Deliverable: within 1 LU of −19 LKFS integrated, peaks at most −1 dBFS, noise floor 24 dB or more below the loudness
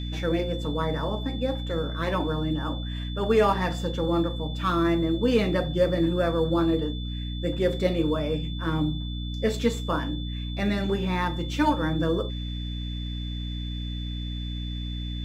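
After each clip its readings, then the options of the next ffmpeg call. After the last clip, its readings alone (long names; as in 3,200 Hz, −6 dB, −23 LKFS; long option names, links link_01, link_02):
mains hum 60 Hz; hum harmonics up to 300 Hz; level of the hum −29 dBFS; interfering tone 3,500 Hz; level of the tone −40 dBFS; integrated loudness −27.0 LKFS; sample peak −9.5 dBFS; target loudness −19.0 LKFS
→ -af "bandreject=frequency=60:width_type=h:width=4,bandreject=frequency=120:width_type=h:width=4,bandreject=frequency=180:width_type=h:width=4,bandreject=frequency=240:width_type=h:width=4,bandreject=frequency=300:width_type=h:width=4"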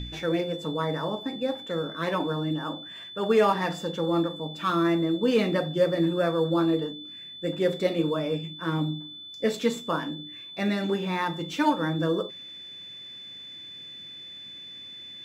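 mains hum none found; interfering tone 3,500 Hz; level of the tone −40 dBFS
→ -af "bandreject=frequency=3500:width=30"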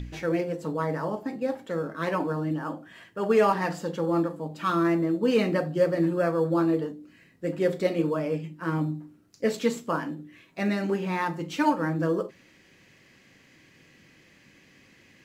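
interfering tone none found; integrated loudness −27.5 LKFS; sample peak −10.5 dBFS; target loudness −19.0 LKFS
→ -af "volume=8.5dB"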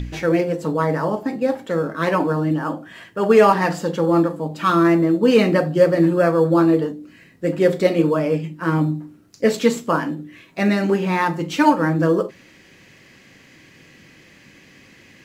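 integrated loudness −19.0 LKFS; sample peak −2.0 dBFS; background noise floor −50 dBFS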